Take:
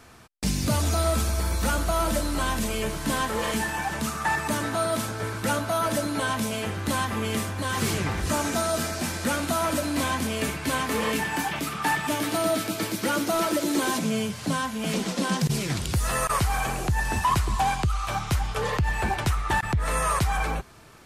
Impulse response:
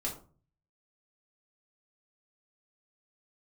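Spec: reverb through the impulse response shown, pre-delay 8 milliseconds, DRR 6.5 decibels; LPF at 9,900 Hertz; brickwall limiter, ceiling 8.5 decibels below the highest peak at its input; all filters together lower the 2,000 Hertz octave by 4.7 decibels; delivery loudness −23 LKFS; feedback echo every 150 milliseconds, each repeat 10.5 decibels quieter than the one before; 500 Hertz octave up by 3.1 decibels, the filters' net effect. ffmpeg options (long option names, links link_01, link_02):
-filter_complex "[0:a]lowpass=9900,equalizer=frequency=500:width_type=o:gain=4.5,equalizer=frequency=2000:width_type=o:gain=-6.5,alimiter=limit=-21.5dB:level=0:latency=1,aecho=1:1:150|300|450:0.299|0.0896|0.0269,asplit=2[link_01][link_02];[1:a]atrim=start_sample=2205,adelay=8[link_03];[link_02][link_03]afir=irnorm=-1:irlink=0,volume=-9dB[link_04];[link_01][link_04]amix=inputs=2:normalize=0,volume=5.5dB"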